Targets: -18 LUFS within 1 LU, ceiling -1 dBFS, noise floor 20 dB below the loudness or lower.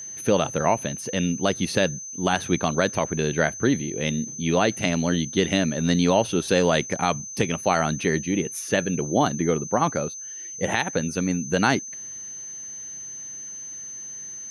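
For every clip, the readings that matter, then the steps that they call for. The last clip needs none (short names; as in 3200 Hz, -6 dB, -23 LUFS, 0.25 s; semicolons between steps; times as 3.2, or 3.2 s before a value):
steady tone 6200 Hz; tone level -34 dBFS; loudness -24.5 LUFS; peak -7.0 dBFS; loudness target -18.0 LUFS
-> notch 6200 Hz, Q 30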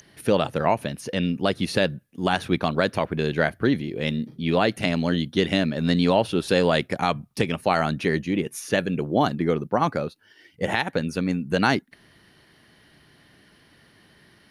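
steady tone none; loudness -24.0 LUFS; peak -7.5 dBFS; loudness target -18.0 LUFS
-> gain +6 dB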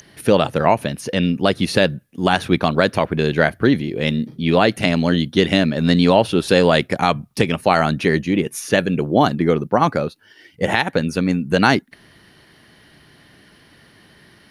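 loudness -18.0 LUFS; peak -1.5 dBFS; noise floor -51 dBFS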